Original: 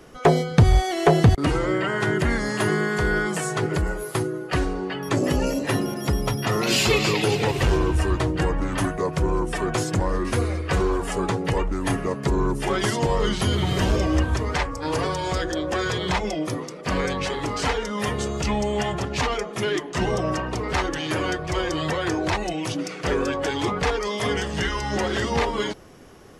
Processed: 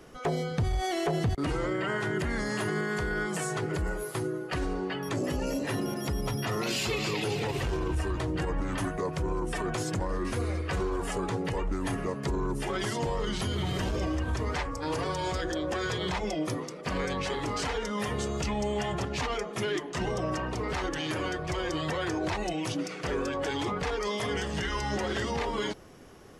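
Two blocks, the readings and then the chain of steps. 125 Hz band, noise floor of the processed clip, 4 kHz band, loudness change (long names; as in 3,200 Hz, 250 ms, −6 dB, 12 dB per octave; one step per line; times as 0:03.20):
−9.0 dB, −40 dBFS, −7.0 dB, −7.5 dB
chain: brickwall limiter −18 dBFS, peak gain reduction 10.5 dB
level −4 dB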